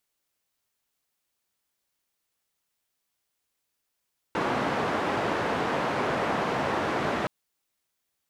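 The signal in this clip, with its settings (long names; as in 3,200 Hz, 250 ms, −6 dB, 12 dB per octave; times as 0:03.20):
band-limited noise 130–1,100 Hz, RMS −27.5 dBFS 2.92 s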